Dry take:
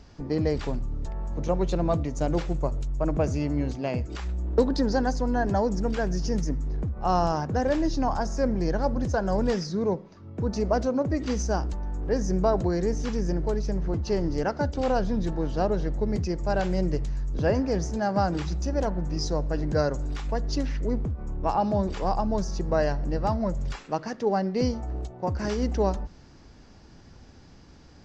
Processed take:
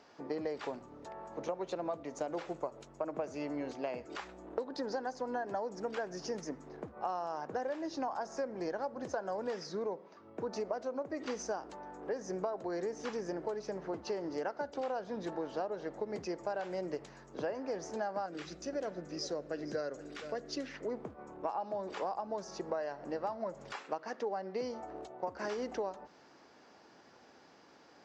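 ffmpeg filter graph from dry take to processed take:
-filter_complex "[0:a]asettb=1/sr,asplit=3[s0][s1][s2];[s0]atrim=end=18.264[s3];[s1]atrim=start=18.26:end=20.74,asetpts=PTS-STARTPTS,afade=t=in:d=0.004:c=qsin,afade=t=out:st=2.476:d=0.004:c=qsin,equalizer=f=900:t=o:w=0.69:g=-13.5,aecho=1:1:467:0.141,atrim=end_sample=109368[s4];[s2]atrim=start=20.736[s5];[s3][s4]acrossfade=d=0.004:c1=hsin:c2=qsin[s6];[s6][s5]acrossfade=d=0.004:c1=qsin:c2=hsin,highpass=480,highshelf=f=2900:g=-10,acompressor=threshold=0.02:ratio=12,volume=1.12"

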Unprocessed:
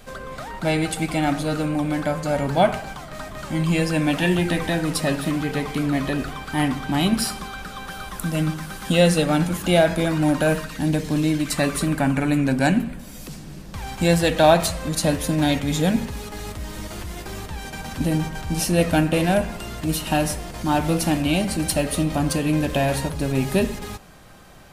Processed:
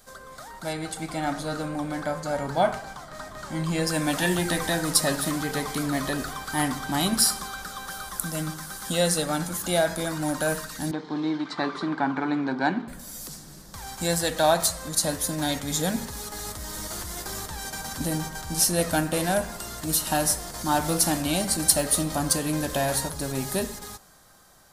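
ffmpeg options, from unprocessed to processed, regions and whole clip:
-filter_complex "[0:a]asettb=1/sr,asplit=3[s0][s1][s2];[s0]atrim=end=0.734[s3];[s1]atrim=start=0.73:end=3.87,asetpts=PTS-STARTPTS,afade=t=in:d=0.004:c=qsin,afade=t=out:st=3.136:d=0.004:c=qsin,lowpass=f=3400:p=1,asplit=2[s4][s5];[s5]adelay=31,volume=0.2[s6];[s4][s6]amix=inputs=2:normalize=0,atrim=end_sample=138474[s7];[s2]atrim=start=3.866[s8];[s3][s7]acrossfade=d=0.004:c1=hsin:c2=qsin[s9];[s9][s8]acrossfade=d=0.004:c1=qsin:c2=hsin,asettb=1/sr,asplit=3[s10][s11][s12];[s10]atrim=end=10.914[s13];[s11]atrim=start=10.91:end=12.88,asetpts=PTS-STARTPTS,afade=t=in:d=0.004:c=qsin,afade=t=out:st=1.966:d=0.004:c=qsin,aeval=exprs='sgn(val(0))*max(abs(val(0))-0.00891,0)':c=same,highpass=230,equalizer=f=350:t=q:w=4:g=6,equalizer=f=580:t=q:w=4:g=-8,equalizer=f=890:t=q:w=4:g=5,equalizer=f=1800:t=q:w=4:g=-4,equalizer=f=2700:t=q:w=4:g=-7,lowpass=f=3500:w=0.5412,lowpass=f=3500:w=1.3066[s14];[s12]atrim=start=12.876[s15];[s13][s14]acrossfade=d=0.004:c1=hsin:c2=qsin[s16];[s16][s15]acrossfade=d=0.004:c1=qsin:c2=hsin,equalizer=f=2600:w=1.6:g=-14.5,dynaudnorm=f=140:g=17:m=3.76,tiltshelf=f=900:g=-7.5,volume=0.447"

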